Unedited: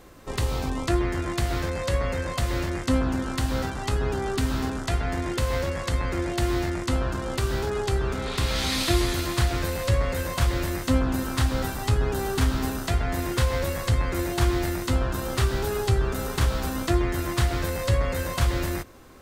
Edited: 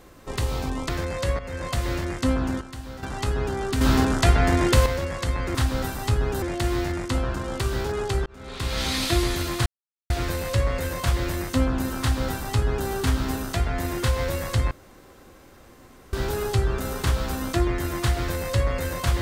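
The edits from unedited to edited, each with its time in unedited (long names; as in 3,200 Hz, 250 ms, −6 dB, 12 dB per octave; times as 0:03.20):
0:00.89–0:01.54: remove
0:02.04–0:02.32: fade in, from −13 dB
0:03.26–0:03.68: clip gain −11 dB
0:04.46–0:05.51: clip gain +8 dB
0:08.04–0:08.59: fade in
0:09.44: splice in silence 0.44 s
0:11.35–0:12.22: duplicate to 0:06.20
0:14.05–0:15.47: fill with room tone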